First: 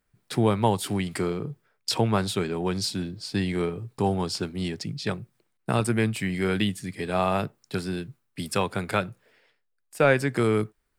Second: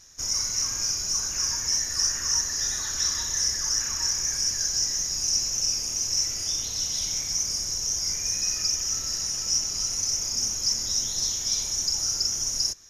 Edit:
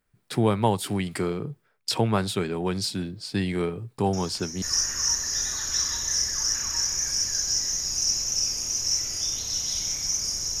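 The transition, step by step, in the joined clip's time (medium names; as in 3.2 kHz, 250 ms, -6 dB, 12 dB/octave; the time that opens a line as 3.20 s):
first
4.13 s: add second from 1.39 s 0.49 s -13.5 dB
4.62 s: go over to second from 1.88 s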